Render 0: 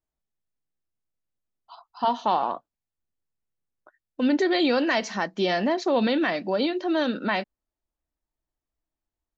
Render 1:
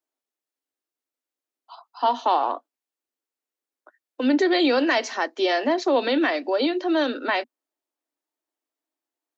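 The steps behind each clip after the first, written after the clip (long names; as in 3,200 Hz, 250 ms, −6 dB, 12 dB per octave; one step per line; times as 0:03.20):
Butterworth high-pass 250 Hz 96 dB per octave
level +2.5 dB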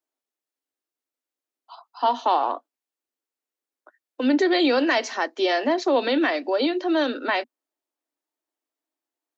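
no processing that can be heard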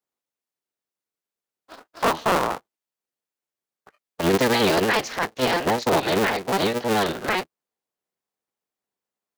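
sub-harmonics by changed cycles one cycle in 3, inverted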